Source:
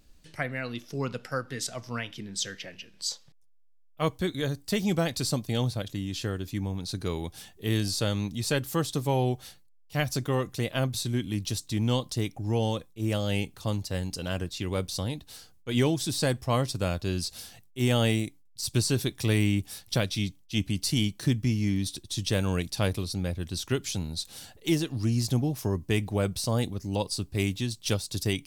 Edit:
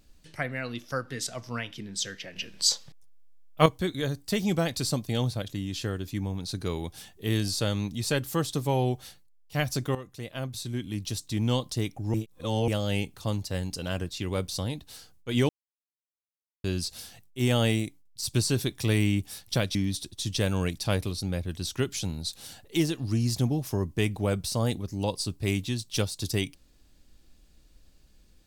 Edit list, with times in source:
0:00.92–0:01.32: remove
0:02.76–0:04.06: clip gain +8.5 dB
0:10.35–0:11.86: fade in, from −13 dB
0:12.54–0:13.08: reverse
0:15.89–0:17.04: silence
0:20.15–0:21.67: remove

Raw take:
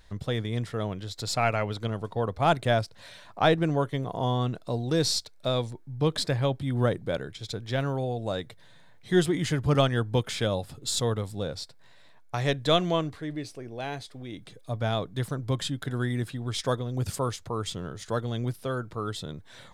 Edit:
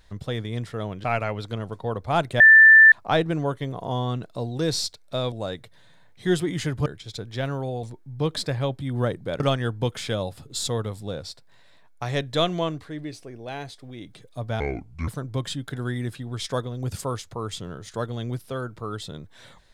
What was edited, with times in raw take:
0:01.04–0:01.36: remove
0:02.72–0:03.24: beep over 1,770 Hz −7.5 dBFS
0:05.64–0:07.21: swap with 0:08.18–0:09.72
0:14.92–0:15.22: play speed 63%

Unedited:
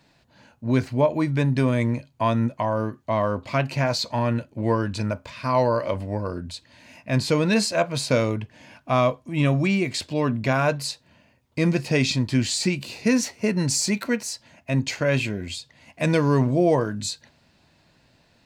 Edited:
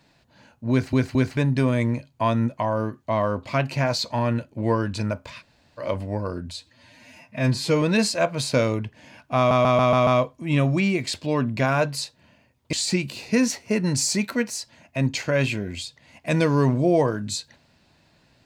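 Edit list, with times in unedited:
0:00.71: stutter in place 0.22 s, 3 plays
0:05.40–0:05.80: fill with room tone, crossfade 0.06 s
0:06.53–0:07.39: time-stretch 1.5×
0:08.94: stutter 0.14 s, 6 plays
0:11.60–0:12.46: remove

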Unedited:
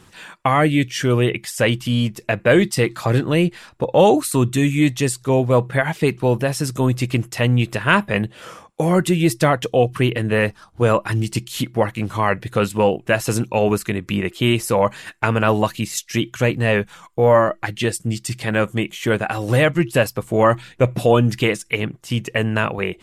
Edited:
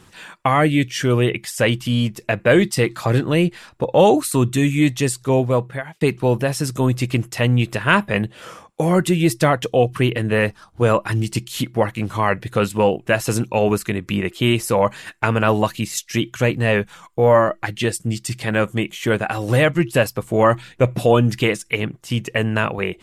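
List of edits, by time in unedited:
0:05.39–0:06.01: fade out

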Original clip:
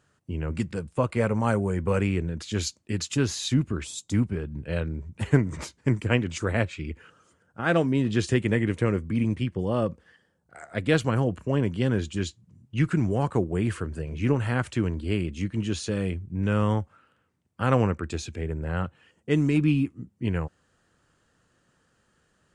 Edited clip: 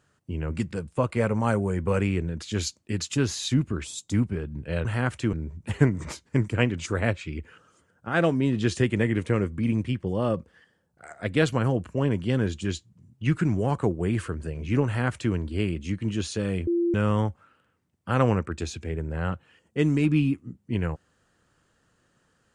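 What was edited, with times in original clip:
0:14.38–0:14.86: duplicate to 0:04.85
0:16.19–0:16.46: beep over 343 Hz −20.5 dBFS

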